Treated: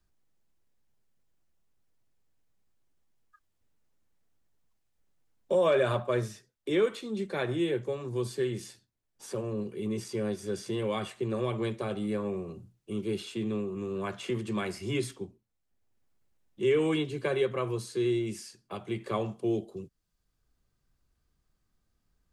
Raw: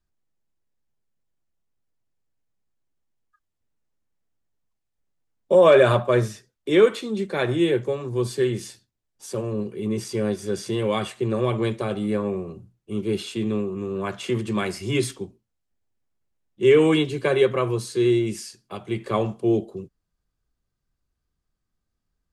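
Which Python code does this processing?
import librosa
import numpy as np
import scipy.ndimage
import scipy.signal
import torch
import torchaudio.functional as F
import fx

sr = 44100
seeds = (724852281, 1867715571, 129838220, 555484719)

y = fx.band_squash(x, sr, depth_pct=40)
y = F.gain(torch.from_numpy(y), -8.0).numpy()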